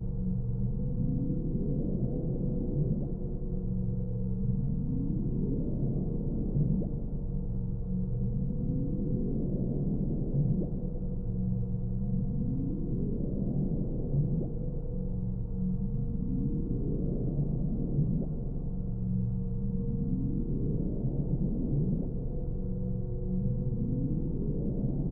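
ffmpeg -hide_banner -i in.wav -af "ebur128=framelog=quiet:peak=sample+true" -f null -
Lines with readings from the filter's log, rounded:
Integrated loudness:
  I:         -32.8 LUFS
  Threshold: -42.8 LUFS
Loudness range:
  LRA:         1.0 LU
  Threshold: -52.8 LUFS
  LRA low:   -33.3 LUFS
  LRA high:  -32.2 LUFS
Sample peak:
  Peak:      -17.6 dBFS
True peak:
  Peak:      -17.6 dBFS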